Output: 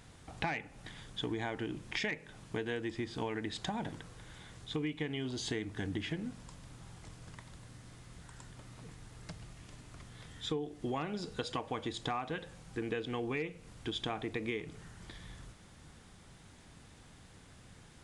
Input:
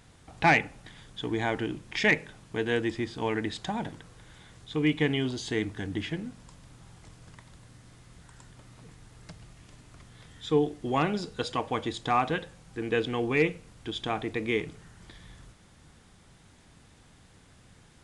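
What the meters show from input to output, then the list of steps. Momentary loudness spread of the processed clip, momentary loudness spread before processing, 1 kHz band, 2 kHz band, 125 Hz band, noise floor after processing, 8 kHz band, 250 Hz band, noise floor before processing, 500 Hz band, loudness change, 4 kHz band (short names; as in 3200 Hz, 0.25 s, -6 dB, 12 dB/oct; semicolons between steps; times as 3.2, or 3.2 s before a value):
20 LU, 13 LU, -11.0 dB, -11.0 dB, -7.0 dB, -57 dBFS, -3.5 dB, -8.0 dB, -57 dBFS, -9.5 dB, -10.0 dB, -5.0 dB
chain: compressor 12:1, threshold -33 dBFS, peak gain reduction 16.5 dB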